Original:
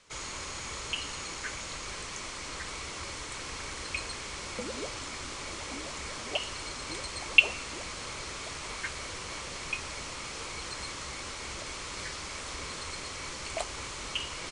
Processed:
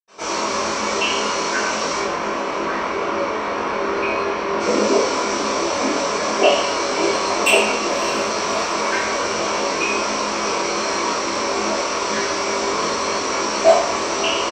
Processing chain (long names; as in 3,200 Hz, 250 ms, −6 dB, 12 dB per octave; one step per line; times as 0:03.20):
low-pass filter 7,900 Hz 12 dB per octave, from 0:01.90 2,500 Hz, from 0:04.52 7,900 Hz
sine wavefolder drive 10 dB, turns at −3.5 dBFS
double-tracking delay 23 ms −4 dB
feedback delay with all-pass diffusion 598 ms, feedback 47%, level −14.5 dB
convolution reverb, pre-delay 76 ms
level −4.5 dB